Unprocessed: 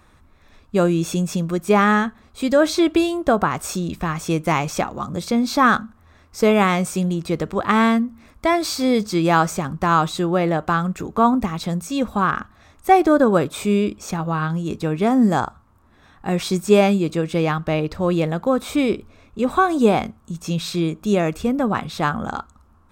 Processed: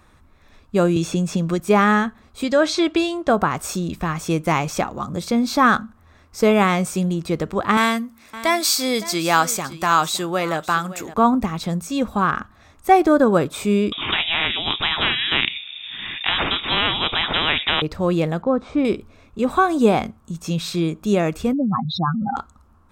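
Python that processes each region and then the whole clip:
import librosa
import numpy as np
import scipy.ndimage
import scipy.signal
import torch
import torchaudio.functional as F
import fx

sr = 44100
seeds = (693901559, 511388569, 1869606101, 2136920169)

y = fx.chain(x, sr, fx.peak_eq(hz=14000.0, db=-10.5, octaves=0.79),
    fx.band_squash(depth_pct=100), at=(0.96, 1.6))
y = fx.chain(y, sr, fx.lowpass(hz=5900.0, slope=12),
    fx.tilt_eq(slope=1.5), at=(2.44, 3.3))
y = fx.chain(y, sr, fx.tilt_eq(slope=3.0),
    fx.echo_single(ms=562, db=-16.0), at=(7.77, 11.14))
y = fx.chain(y, sr, fx.freq_invert(carrier_hz=3600),
    fx.spectral_comp(ratio=4.0), at=(13.92, 17.82))
y = fx.chain(y, sr, fx.lowpass(hz=5000.0, slope=24),
    fx.peak_eq(hz=3800.0, db=-13.5, octaves=1.8), at=(18.42, 18.85))
y = fx.chain(y, sr, fx.spec_expand(power=3.9),
    fx.env_flatten(amount_pct=50), at=(21.53, 22.36))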